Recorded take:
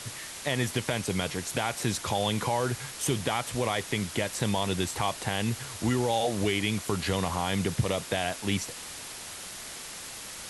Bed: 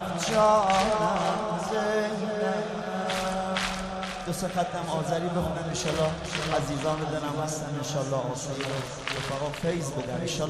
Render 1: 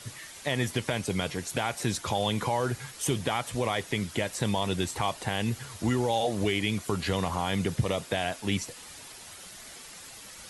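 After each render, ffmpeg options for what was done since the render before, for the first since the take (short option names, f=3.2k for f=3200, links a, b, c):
-af "afftdn=nr=8:nf=-42"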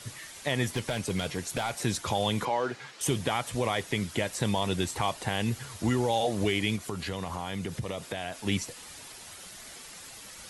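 -filter_complex "[0:a]asettb=1/sr,asplit=3[a][b][c];[a]atrim=end=0.674[d];[b]atrim=start=0.67:end=1.75,asetpts=PTS-STARTPTS,afade=t=in:d=0.004:c=qsin,afade=t=out:st=1.076:d=0.004:c=qsin,asoftclip=type=hard:threshold=-23dB[e];[c]atrim=start=1.746[f];[d][e]acrossfade=d=0.004:c1=hsin:c2=qsin[g];[g][f]acrossfade=d=0.004:c1=qsin:c2=hsin,asettb=1/sr,asplit=3[h][i][j];[h]atrim=end=2.454[k];[i]atrim=start=2.45:end=3.01,asetpts=PTS-STARTPTS,afade=t=in:d=0.004:c=qsin,afade=t=out:st=0.556:d=0.004:c=qsin,highpass=260,lowpass=4.6k[l];[j]atrim=start=3.006[m];[k][l]acrossfade=d=0.004:c1=hsin:c2=qsin[n];[n][m]acrossfade=d=0.004:c1=qsin:c2=hsin,asettb=1/sr,asplit=3[o][p][q];[o]atrim=end=6.764[r];[p]atrim=start=6.76:end=8.46,asetpts=PTS-STARTPTS,afade=t=in:d=0.004:c=qsin,afade=t=out:st=1.696:d=0.004:c=qsin,acompressor=threshold=-34dB:ratio=2:attack=3.2:release=140:knee=1:detection=peak[s];[q]atrim=start=8.456[t];[r][s]acrossfade=d=0.004:c1=hsin:c2=qsin[u];[u][t]acrossfade=d=0.004:c1=qsin:c2=hsin"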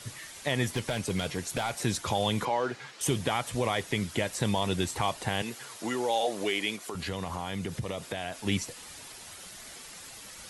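-filter_complex "[0:a]asettb=1/sr,asplit=3[a][b][c];[a]atrim=end=5.424[d];[b]atrim=start=5.42:end=6.95,asetpts=PTS-STARTPTS,afade=t=in:d=0.004:c=qsin,afade=t=out:st=1.526:d=0.004:c=qsin,highpass=340[e];[c]atrim=start=6.946[f];[d][e]acrossfade=d=0.004:c1=hsin:c2=qsin[g];[g][f]acrossfade=d=0.004:c1=qsin:c2=hsin"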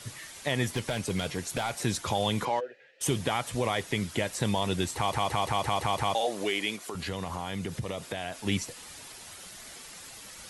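-filter_complex "[0:a]asplit=3[a][b][c];[a]afade=t=out:st=2.59:d=0.02[d];[b]asplit=3[e][f][g];[e]bandpass=f=530:t=q:w=8,volume=0dB[h];[f]bandpass=f=1.84k:t=q:w=8,volume=-6dB[i];[g]bandpass=f=2.48k:t=q:w=8,volume=-9dB[j];[h][i][j]amix=inputs=3:normalize=0,afade=t=in:st=2.59:d=0.02,afade=t=out:st=3:d=0.02[k];[c]afade=t=in:st=3:d=0.02[l];[d][k][l]amix=inputs=3:normalize=0,asplit=8[m][n][o][p][q][r][s][t];[m]atrim=end=5.132[u];[n]atrim=start=4.958:end=5.132[v];[o]atrim=start=4.958:end=5.132[w];[p]atrim=start=4.958:end=5.132[x];[q]atrim=start=4.958:end=5.132[y];[r]atrim=start=4.958:end=5.132[z];[s]atrim=start=4.958:end=5.132[aa];[t]atrim=start=6.148[ab];[u][v]acrossfade=d=0.004:c1=hsin:c2=hsin[ac];[ac][w]acrossfade=d=0.004:c1=hsin:c2=hsin[ad];[ad][x]acrossfade=d=0.004:c1=hsin:c2=hsin[ae];[ae][y]acrossfade=d=0.004:c1=hsin:c2=hsin[af];[af][z]acrossfade=d=0.004:c1=hsin:c2=hsin[ag];[ag][aa]acrossfade=d=0.004:c1=hsin:c2=hsin[ah];[ah][ab]acrossfade=d=0.004:c1=hsin:c2=hsin"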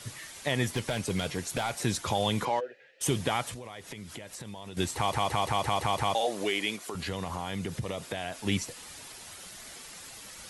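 -filter_complex "[0:a]asettb=1/sr,asplit=3[a][b][c];[a]atrim=end=3.534[d];[b]atrim=start=3.53:end=4.77,asetpts=PTS-STARTPTS,afade=t=in:d=0.004:c=qsin,afade=t=out:st=1.236:d=0.004:c=qsin,acompressor=threshold=-39dB:ratio=6:attack=3.2:release=140:knee=1:detection=peak[e];[c]atrim=start=4.766[f];[d][e]acrossfade=d=0.004:c1=hsin:c2=qsin[g];[g][f]acrossfade=d=0.004:c1=qsin:c2=hsin"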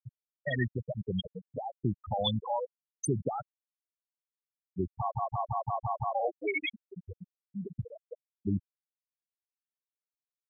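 -af "afftfilt=real='re*gte(hypot(re,im),0.158)':imag='im*gte(hypot(re,im),0.158)':win_size=1024:overlap=0.75,highshelf=f=1.5k:t=q:w=1.5:g=7.5"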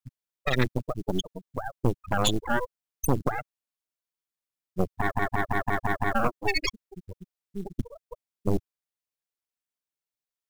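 -af "aeval=exprs='0.178*(cos(1*acos(clip(val(0)/0.178,-1,1)))-cos(1*PI/2))+0.0112*(cos(2*acos(clip(val(0)/0.178,-1,1)))-cos(2*PI/2))+0.00447*(cos(5*acos(clip(val(0)/0.178,-1,1)))-cos(5*PI/2))+0.0891*(cos(6*acos(clip(val(0)/0.178,-1,1)))-cos(6*PI/2))':c=same,acrusher=bits=7:mode=log:mix=0:aa=0.000001"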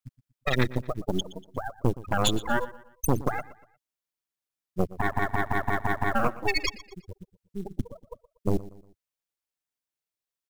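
-af "aecho=1:1:119|238|357:0.126|0.0504|0.0201"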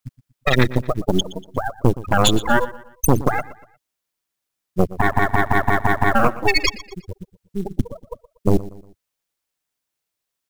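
-af "volume=9.5dB,alimiter=limit=-3dB:level=0:latency=1"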